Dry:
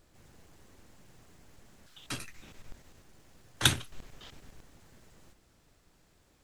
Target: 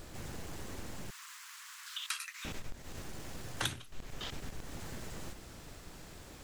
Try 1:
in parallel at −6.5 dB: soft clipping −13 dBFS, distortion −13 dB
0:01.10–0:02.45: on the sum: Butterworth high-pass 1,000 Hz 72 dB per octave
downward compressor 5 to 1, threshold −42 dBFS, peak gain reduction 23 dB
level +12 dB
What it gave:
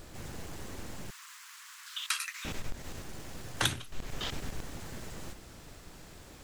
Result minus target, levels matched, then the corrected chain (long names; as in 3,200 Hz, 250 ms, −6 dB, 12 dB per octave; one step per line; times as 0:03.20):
downward compressor: peak gain reduction −6 dB
in parallel at −6.5 dB: soft clipping −13 dBFS, distortion −13 dB
0:01.10–0:02.45: on the sum: Butterworth high-pass 1,000 Hz 72 dB per octave
downward compressor 5 to 1, threshold −49.5 dBFS, peak gain reduction 29 dB
level +12 dB